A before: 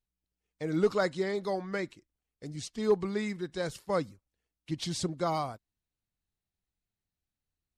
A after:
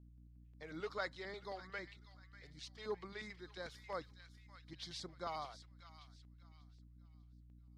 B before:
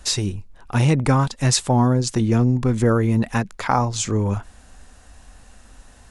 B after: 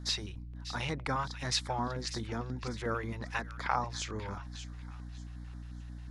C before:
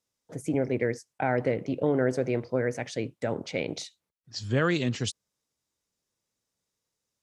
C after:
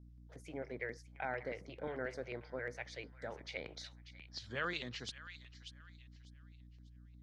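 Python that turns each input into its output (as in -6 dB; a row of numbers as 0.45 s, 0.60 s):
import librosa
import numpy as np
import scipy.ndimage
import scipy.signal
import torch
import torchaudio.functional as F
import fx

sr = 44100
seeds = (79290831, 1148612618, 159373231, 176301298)

y = librosa.effects.preemphasis(x, coef=0.97, zi=[0.0])
y = fx.add_hum(y, sr, base_hz=60, snr_db=16)
y = fx.air_absorb(y, sr, metres=320.0)
y = fx.echo_wet_highpass(y, sr, ms=594, feedback_pct=31, hz=1500.0, wet_db=-11.0)
y = fx.filter_lfo_notch(y, sr, shape='square', hz=5.6, low_hz=240.0, high_hz=2700.0, q=1.1)
y = y * 10.0 ** (8.0 / 20.0)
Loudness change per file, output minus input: -14.5 LU, -17.0 LU, -15.0 LU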